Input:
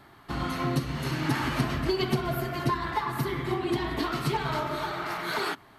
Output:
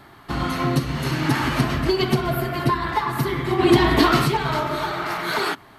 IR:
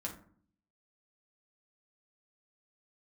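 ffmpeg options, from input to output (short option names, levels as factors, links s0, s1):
-filter_complex "[0:a]asettb=1/sr,asplit=3[s0][s1][s2];[s0]atrim=end=2.304[s3];[s1]atrim=start=2.3:end=2.89,asetpts=PTS-STARTPTS,afade=t=in:d=0.004:c=qsin,afade=t=out:st=0.586:d=0.004:c=qsin,equalizer=f=6300:t=o:w=0.43:g=-6.5[s4];[s2]atrim=start=2.886[s5];[s3][s4]acrossfade=d=0.004:c1=hsin:c2=qsin[s6];[s6][s5]acrossfade=d=0.004:c1=qsin:c2=hsin,asplit=3[s7][s8][s9];[s7]afade=t=out:st=3.58:d=0.02[s10];[s8]acontrast=81,afade=t=in:st=3.58:d=0.02,afade=t=out:st=4.24:d=0.02[s11];[s9]afade=t=in:st=4.24:d=0.02[s12];[s10][s11][s12]amix=inputs=3:normalize=0,volume=2.11"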